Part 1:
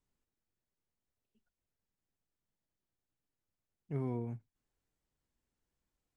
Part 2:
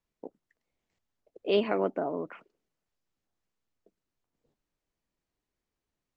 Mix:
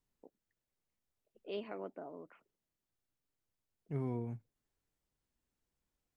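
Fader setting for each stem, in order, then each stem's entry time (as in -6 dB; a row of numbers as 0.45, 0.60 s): -1.0, -16.0 dB; 0.00, 0.00 s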